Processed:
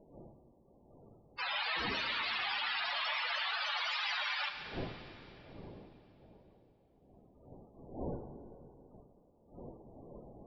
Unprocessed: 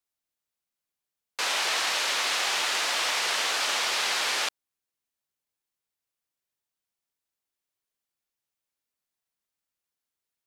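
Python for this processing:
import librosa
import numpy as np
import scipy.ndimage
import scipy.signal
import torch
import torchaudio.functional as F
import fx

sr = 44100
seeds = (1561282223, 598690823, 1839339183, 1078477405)

y = fx.dmg_wind(x, sr, seeds[0], corner_hz=530.0, level_db=-46.0)
y = fx.spec_topn(y, sr, count=32)
y = fx.rev_plate(y, sr, seeds[1], rt60_s=3.0, hf_ratio=1.0, predelay_ms=0, drr_db=6.5)
y = y * 10.0 ** (-4.0 / 20.0)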